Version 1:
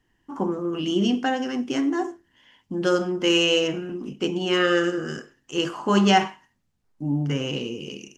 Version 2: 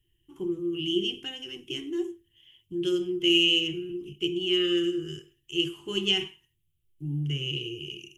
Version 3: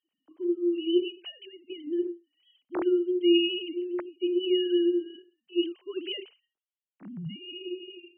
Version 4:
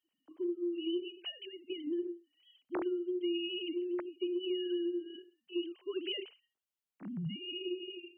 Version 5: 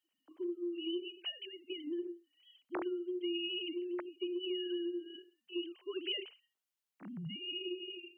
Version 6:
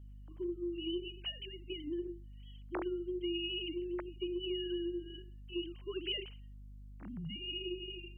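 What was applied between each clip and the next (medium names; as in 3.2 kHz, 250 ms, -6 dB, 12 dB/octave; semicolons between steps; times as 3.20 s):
FFT filter 110 Hz 0 dB, 160 Hz -4 dB, 240 Hz -27 dB, 350 Hz -1 dB, 580 Hz -29 dB, 1.6 kHz -21 dB, 3.1 kHz +4 dB, 4.5 kHz -16 dB, 7.9 kHz -5 dB, 11 kHz +5 dB
formants replaced by sine waves
compression 6:1, threshold -33 dBFS, peak gain reduction 15 dB
bass shelf 460 Hz -7.5 dB; trim +1.5 dB
mains buzz 50 Hz, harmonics 5, -51 dBFS -9 dB/octave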